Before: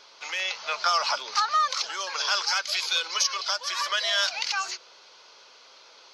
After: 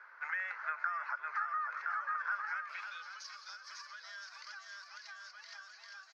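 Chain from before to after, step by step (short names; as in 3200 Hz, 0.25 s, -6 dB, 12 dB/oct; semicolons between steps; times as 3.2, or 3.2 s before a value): resonant high shelf 2300 Hz -12.5 dB, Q 3; bouncing-ball echo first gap 0.55 s, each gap 0.85×, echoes 5; compressor 4:1, threshold -34 dBFS, peak gain reduction 16.5 dB; band-pass sweep 1700 Hz -> 4700 Hz, 2.38–3.3; gain +1.5 dB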